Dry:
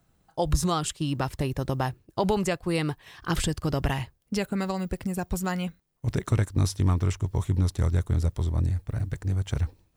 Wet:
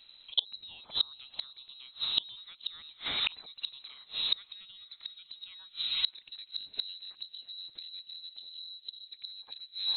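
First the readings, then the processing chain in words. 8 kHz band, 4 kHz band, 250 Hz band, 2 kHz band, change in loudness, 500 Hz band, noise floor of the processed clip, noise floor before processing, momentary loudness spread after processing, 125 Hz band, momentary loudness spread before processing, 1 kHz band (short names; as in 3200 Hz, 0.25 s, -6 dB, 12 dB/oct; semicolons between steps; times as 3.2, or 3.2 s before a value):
under -40 dB, +8.5 dB, -34.0 dB, -8.0 dB, -7.5 dB, -29.5 dB, -60 dBFS, -69 dBFS, 15 LU, under -40 dB, 7 LU, -20.5 dB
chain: in parallel at -2.5 dB: limiter -21 dBFS, peak gain reduction 9.5 dB; on the sum: inverted band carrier 4000 Hz; spectral delete 8.58–9.12, 580–2800 Hz; on a send: diffused feedback echo 0.53 s, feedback 41%, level -13.5 dB; on the sum: flipped gate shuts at -17 dBFS, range -31 dB; pre-echo 55 ms -20 dB; gain +4 dB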